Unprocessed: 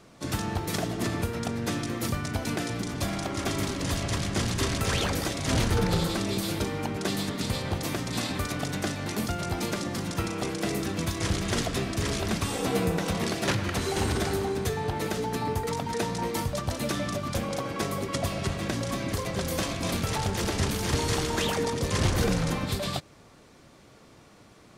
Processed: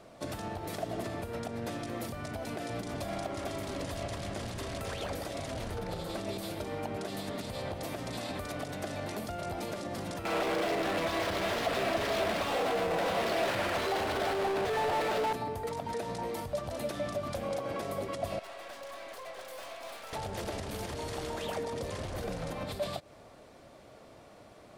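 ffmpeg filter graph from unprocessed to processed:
-filter_complex "[0:a]asettb=1/sr,asplit=3[a][b][c];[a]atrim=end=10.254[d];[b]atrim=start=10.25:end=15.33,asetpts=PTS-STARTPTS,afade=t=in:d=0.004:c=qsin,afade=t=out:st=5.076:d=0.004:c=qsin,asplit=2[e][f];[f]highpass=f=720:p=1,volume=31dB,asoftclip=type=tanh:threshold=-14.5dB[g];[e][g]amix=inputs=2:normalize=0,lowpass=f=8k:p=1,volume=-6dB,adynamicsmooth=sensitivity=3:basefreq=740[h];[c]atrim=start=15.326[i];[d][h]acrossfade=d=0.004:c1=hsin:c2=qsin[j];[j][i]acrossfade=d=0.004:c1=qsin:c2=hsin,asettb=1/sr,asplit=3[k][l][m];[k]atrim=end=18.394[n];[l]atrim=start=18.39:end=20.13,asetpts=PTS-STARTPTS,afade=t=in:d=0.004:c=qsin,afade=t=out:st=1.736:d=0.004:c=qsin,highpass=820,highshelf=f=3.9k:g=-7,aeval=exprs='(tanh(126*val(0)+0.6)-tanh(0.6))/126':c=same[o];[m]atrim=start=20.126[p];[n][o]acrossfade=d=0.004:c1=hsin:c2=qsin[q];[q][p]acrossfade=d=0.004:c1=qsin:c2=hsin,acompressor=threshold=-28dB:ratio=6,alimiter=level_in=2.5dB:limit=-24dB:level=0:latency=1:release=148,volume=-2.5dB,equalizer=f=160:t=o:w=0.67:g=-3,equalizer=f=630:t=o:w=0.67:g=10,equalizer=f=6.3k:t=o:w=0.67:g=-4,volume=-2.5dB"

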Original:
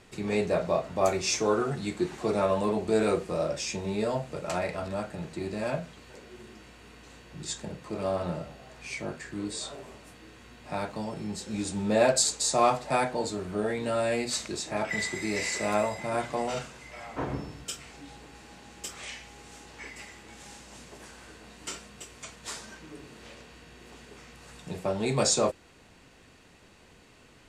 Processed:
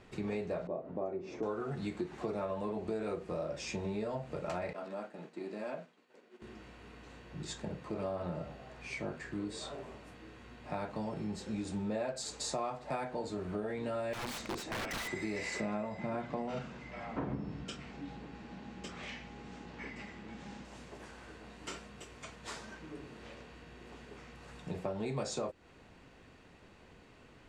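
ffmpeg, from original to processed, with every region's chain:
-filter_complex "[0:a]asettb=1/sr,asplit=3[a][b][c];[a]atrim=end=0.674[d];[b]atrim=start=0.67:end=1.43,asetpts=PTS-STARTPTS,afade=t=in:d=0.004:c=qsin,afade=t=out:st=0.756:d=0.004:c=qsin,bandpass=f=330:t=q:w=1.2,acompressor=mode=upward:threshold=-36dB:ratio=2.5:attack=3.2:release=140:knee=2.83:detection=peak[e];[c]atrim=start=1.426[f];[d][e]acrossfade=d=0.004:c1=hsin:c2=qsin[g];[g][f]acrossfade=d=0.004:c1=qsin:c2=hsin,asettb=1/sr,asplit=3[h][i][j];[h]atrim=end=4.734[k];[i]atrim=start=4.73:end=6.42,asetpts=PTS-STARTPTS,afade=t=in:d=0.004:c=qsin,afade=t=out:st=1.686:d=0.004:c=qsin,highpass=f=210:w=0.5412,highpass=f=210:w=1.3066,acompressor=threshold=-46dB:ratio=1.5:attack=3.2:release=140:knee=1:detection=peak,agate=range=-33dB:threshold=-43dB:ratio=3:release=100:detection=peak[l];[j]atrim=start=6.416[m];[k][l]acrossfade=d=0.004:c1=hsin:c2=qsin[n];[n][m]acrossfade=d=0.004:c1=qsin:c2=hsin,asettb=1/sr,asplit=3[o][p][q];[o]atrim=end=14.134[r];[p]atrim=start=14.13:end=15.08,asetpts=PTS-STARTPTS,afade=t=in:d=0.004:c=qsin,afade=t=out:st=0.946:d=0.004:c=qsin,equalizer=f=260:w=2.2:g=4.5,aeval=exprs='(mod(22.4*val(0)+1,2)-1)/22.4':c=same[s];[q]atrim=start=15.076[t];[r][s]acrossfade=d=0.004:c1=hsin:c2=qsin[u];[u][t]acrossfade=d=0.004:c1=qsin:c2=hsin,asettb=1/sr,asplit=3[v][w][x];[v]atrim=end=15.604[y];[w]atrim=start=15.6:end=20.65,asetpts=PTS-STARTPTS,afade=t=in:d=0.004:c=qsin,afade=t=out:st=5.046:d=0.004:c=qsin,lowpass=5.8k,equalizer=f=200:t=o:w=0.93:g=9.5[z];[x]atrim=start=20.646[aa];[y][z]acrossfade=d=0.004:c1=hsin:c2=qsin[ab];[ab][aa]acrossfade=d=0.004:c1=qsin:c2=hsin,lowpass=f=2.3k:p=1,acompressor=threshold=-33dB:ratio=6,volume=-1dB"

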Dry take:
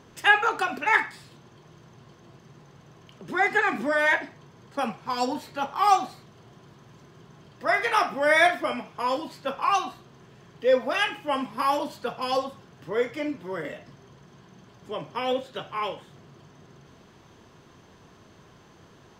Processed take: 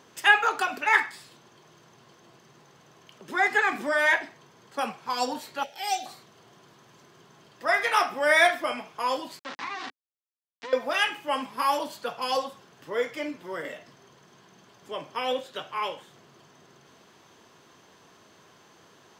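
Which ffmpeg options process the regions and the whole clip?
-filter_complex "[0:a]asettb=1/sr,asplit=3[a][b][c];[a]atrim=end=5.634[d];[b]atrim=start=5.63:end=6.06,asetpts=PTS-STARTPTS,afade=t=in:d=0.004:c=qsin,afade=t=out:st=0.426:d=0.004:c=qsin,asuperstop=centerf=1100:order=4:qfactor=0.86,lowshelf=f=500:t=q:w=1.5:g=-7[e];[c]atrim=start=6.056[f];[d][e]acrossfade=d=0.004:c1=hsin:c2=qsin[g];[g][f]acrossfade=d=0.004:c1=qsin:c2=hsin,asettb=1/sr,asplit=3[h][i][j];[h]atrim=end=9.394[k];[i]atrim=start=9.39:end=10.73,asetpts=PTS-STARTPTS,afade=t=in:d=0.004:c=qsin,afade=t=out:st=1.336:d=0.004:c=qsin,acrusher=bits=3:dc=4:mix=0:aa=0.000001,acompressor=threshold=-27dB:ratio=10:attack=3.2:release=140:knee=1:detection=peak,highpass=110,equalizer=f=270:t=q:w=4:g=6,equalizer=f=510:t=q:w=4:g=-6,equalizer=f=1.8k:t=q:w=4:g=4,lowpass=f=5.2k:w=0.5412,lowpass=f=5.2k:w=1.3066[l];[j]atrim=start=10.726[m];[k][l]acrossfade=d=0.004:c1=hsin:c2=qsin[n];[n][m]acrossfade=d=0.004:c1=qsin:c2=hsin,highpass=f=410:p=1,highshelf=f=5.1k:g=5"

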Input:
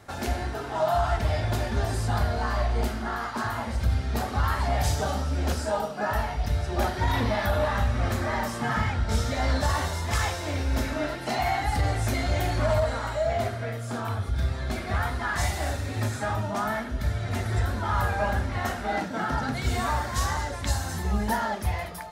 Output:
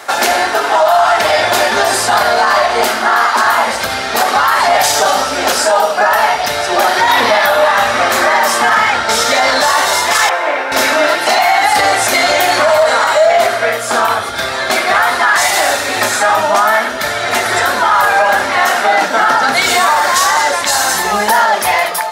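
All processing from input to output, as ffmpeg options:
-filter_complex "[0:a]asettb=1/sr,asplit=3[a][b][c];[a]atrim=end=10.294[d];[b]atrim=start=10.29:end=10.72,asetpts=PTS-STARTPTS,afade=t=in:d=0.004:c=qsin,afade=t=out:st=0.426:d=0.004:c=qsin,highpass=f=120:w=0.5412,highpass=f=120:w=1.3066,acrossover=split=410 2400:gain=0.251 1 0.0794[e][f][g];[e][f][g]amix=inputs=3:normalize=0[h];[c]atrim=start=10.716[i];[d][h]acrossfade=d=0.004:c1=hsin:c2=qsin[j];[j][i]acrossfade=d=0.004:c1=qsin:c2=hsin,highpass=620,alimiter=level_in=24.5dB:limit=-1dB:release=50:level=0:latency=1,volume=-1dB"

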